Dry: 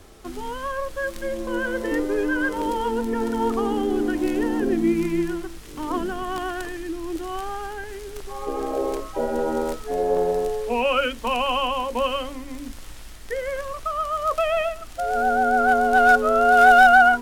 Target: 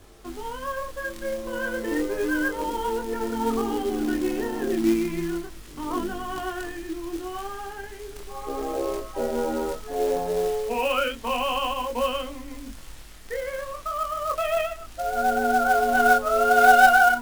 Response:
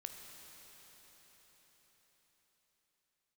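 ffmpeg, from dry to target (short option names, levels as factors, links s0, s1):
-af "flanger=delay=20:depth=8:speed=0.33,acrusher=bits=4:mode=log:mix=0:aa=0.000001"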